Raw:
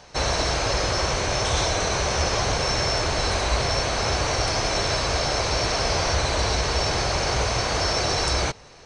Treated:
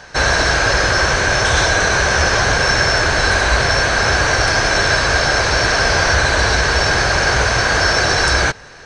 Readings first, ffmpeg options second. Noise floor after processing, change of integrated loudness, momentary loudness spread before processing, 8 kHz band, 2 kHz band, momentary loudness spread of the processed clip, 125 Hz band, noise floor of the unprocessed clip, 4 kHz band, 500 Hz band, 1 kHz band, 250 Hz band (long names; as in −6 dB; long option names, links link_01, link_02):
−38 dBFS, +9.0 dB, 1 LU, +6.5 dB, +15.5 dB, 1 LU, +6.5 dB, −47 dBFS, +6.5 dB, +6.5 dB, +8.0 dB, +6.5 dB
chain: -af "equalizer=frequency=1600:width_type=o:width=0.33:gain=14,volume=6.5dB"